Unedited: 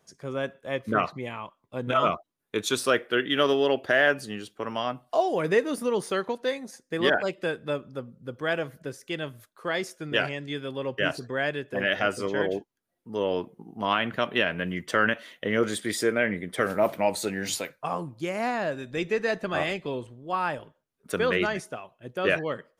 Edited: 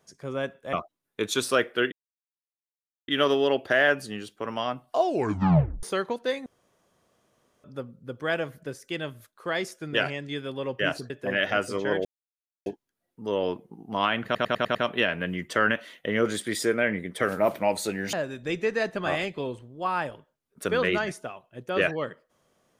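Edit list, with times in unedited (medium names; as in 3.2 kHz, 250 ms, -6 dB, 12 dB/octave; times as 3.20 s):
0.73–2.08 s: delete
3.27 s: insert silence 1.16 s
5.23 s: tape stop 0.79 s
6.65–7.83 s: room tone
11.29–11.59 s: delete
12.54 s: insert silence 0.61 s
14.13 s: stutter 0.10 s, 6 plays
17.51–18.61 s: delete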